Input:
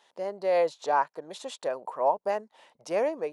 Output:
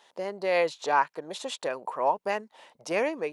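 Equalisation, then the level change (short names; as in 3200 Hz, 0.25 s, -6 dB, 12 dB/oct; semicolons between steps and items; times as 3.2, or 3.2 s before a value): dynamic EQ 2500 Hz, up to +6 dB, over -48 dBFS, Q 1.4; dynamic EQ 630 Hz, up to -7 dB, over -38 dBFS, Q 1.4; +4.0 dB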